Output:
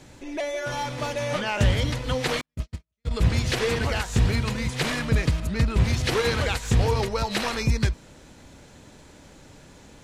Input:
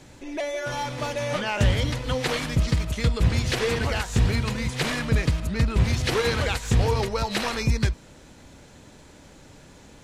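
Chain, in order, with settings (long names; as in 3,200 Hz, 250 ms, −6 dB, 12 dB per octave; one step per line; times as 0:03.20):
0:02.41–0:03.11: noise gate −17 dBFS, range −57 dB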